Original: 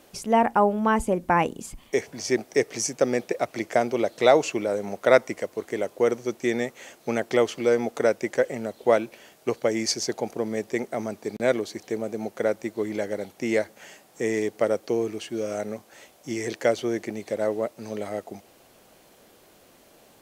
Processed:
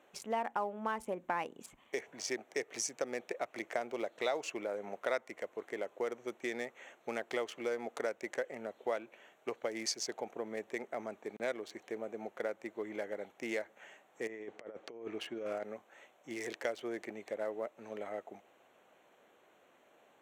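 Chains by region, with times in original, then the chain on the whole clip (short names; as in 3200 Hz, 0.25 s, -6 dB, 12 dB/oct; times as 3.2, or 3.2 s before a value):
14.27–15.63 air absorption 91 m + negative-ratio compressor -30 dBFS, ratio -0.5
whole clip: Wiener smoothing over 9 samples; HPF 750 Hz 6 dB/oct; compressor 2.5:1, threshold -30 dBFS; gain -4.5 dB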